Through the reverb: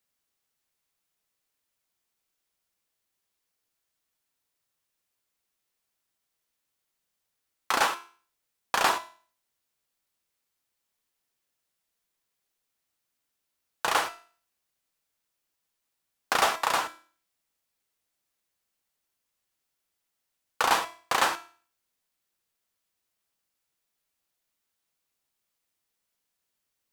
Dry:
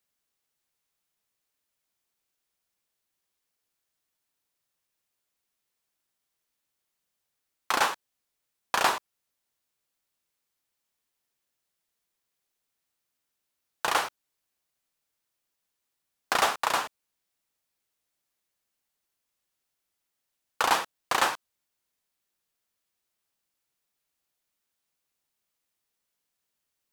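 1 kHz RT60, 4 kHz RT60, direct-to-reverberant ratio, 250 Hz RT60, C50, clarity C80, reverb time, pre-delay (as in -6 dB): 0.45 s, 0.45 s, 8.5 dB, 0.45 s, 15.0 dB, 19.5 dB, 0.45 s, 3 ms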